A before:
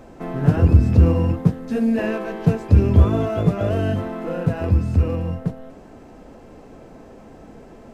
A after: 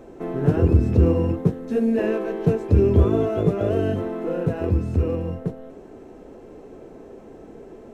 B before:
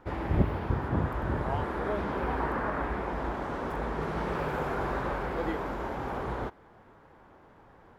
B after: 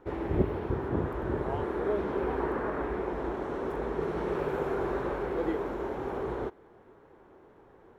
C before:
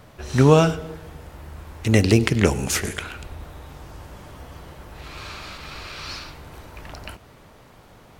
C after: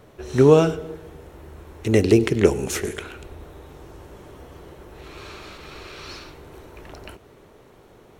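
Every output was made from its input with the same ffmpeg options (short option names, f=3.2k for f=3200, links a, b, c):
-af "equalizer=f=390:t=o:w=0.77:g=11,bandreject=f=4.8k:w=12,volume=-4.5dB"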